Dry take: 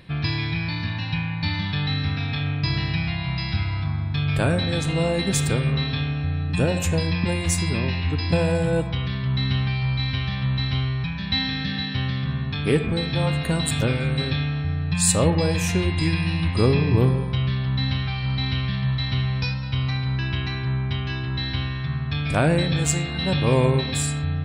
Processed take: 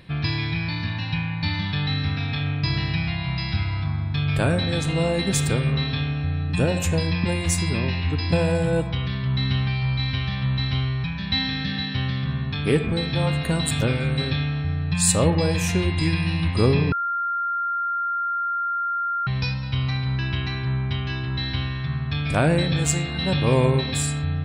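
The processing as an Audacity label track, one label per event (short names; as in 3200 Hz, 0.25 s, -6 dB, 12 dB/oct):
16.920000	19.270000	bleep 1390 Hz -22 dBFS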